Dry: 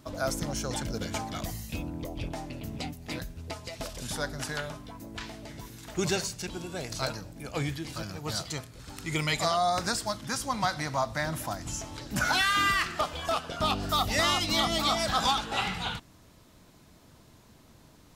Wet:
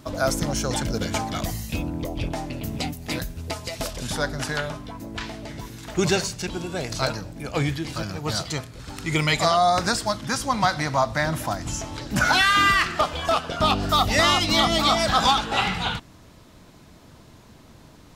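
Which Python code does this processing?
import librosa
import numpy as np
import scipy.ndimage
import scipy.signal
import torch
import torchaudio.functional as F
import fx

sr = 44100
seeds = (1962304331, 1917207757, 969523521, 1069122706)

y = fx.high_shelf(x, sr, hz=7500.0, db=fx.steps((0.0, -2.0), (2.62, 4.5), (3.89, -7.0)))
y = y * librosa.db_to_amplitude(7.5)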